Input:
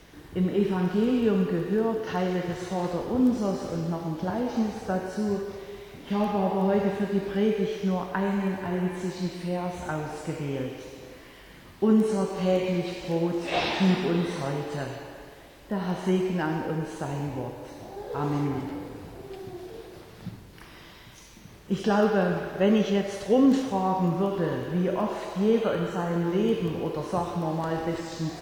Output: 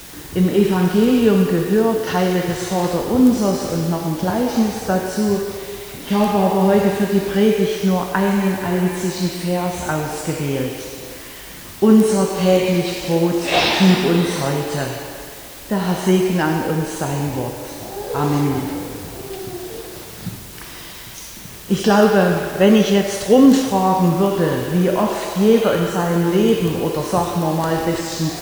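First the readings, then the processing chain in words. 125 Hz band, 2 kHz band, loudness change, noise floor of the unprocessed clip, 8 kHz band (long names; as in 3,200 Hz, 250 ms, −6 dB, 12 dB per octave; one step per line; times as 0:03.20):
+9.5 dB, +10.5 dB, +9.5 dB, −49 dBFS, +17.5 dB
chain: high-shelf EQ 5,000 Hz +10.5 dB
in parallel at −10.5 dB: bit-depth reduction 6 bits, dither triangular
on the sum: level +7 dB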